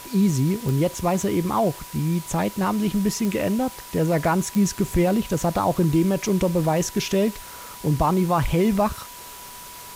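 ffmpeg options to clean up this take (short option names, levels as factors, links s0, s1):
-af "adeclick=t=4,bandreject=f=980:w=30,afftdn=nr=28:nf=-40"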